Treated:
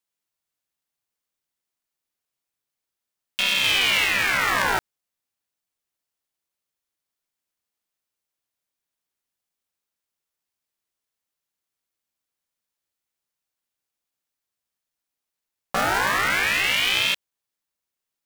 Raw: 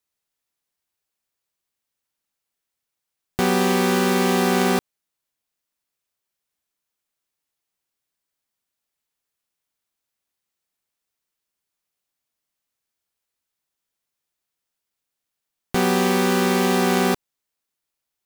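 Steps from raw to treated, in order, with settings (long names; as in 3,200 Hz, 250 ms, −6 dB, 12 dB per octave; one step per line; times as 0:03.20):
0:03.64–0:04.05: converter with a step at zero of −25 dBFS
ring modulator whose carrier an LFO sweeps 1,900 Hz, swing 55%, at 0.29 Hz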